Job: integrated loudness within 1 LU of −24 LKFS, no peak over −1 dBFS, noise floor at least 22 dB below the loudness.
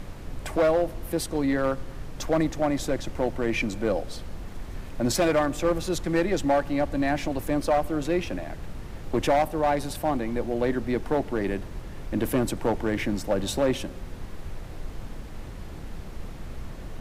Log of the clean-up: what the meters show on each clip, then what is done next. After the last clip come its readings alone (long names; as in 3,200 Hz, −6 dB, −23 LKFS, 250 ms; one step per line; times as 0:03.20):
share of clipped samples 1.3%; peaks flattened at −16.5 dBFS; background noise floor −39 dBFS; target noise floor −49 dBFS; integrated loudness −26.5 LKFS; sample peak −16.5 dBFS; target loudness −24.0 LKFS
→ clipped peaks rebuilt −16.5 dBFS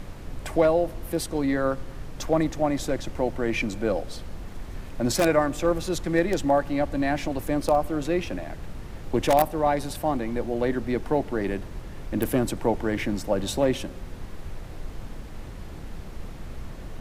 share of clipped samples 0.0%; background noise floor −39 dBFS; target noise floor −48 dBFS
→ noise reduction from a noise print 9 dB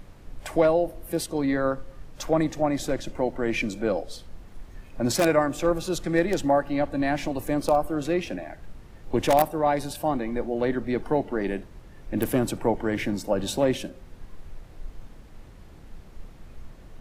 background noise floor −47 dBFS; target noise floor −48 dBFS
→ noise reduction from a noise print 6 dB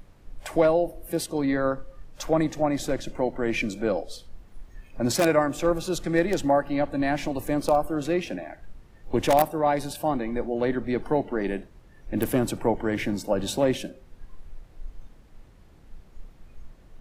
background noise floor −53 dBFS; integrated loudness −26.0 LKFS; sample peak −7.5 dBFS; target loudness −24.0 LKFS
→ level +2 dB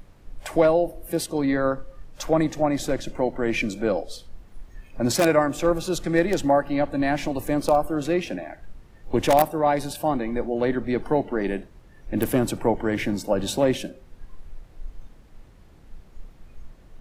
integrated loudness −24.0 LKFS; sample peak −5.5 dBFS; background noise floor −51 dBFS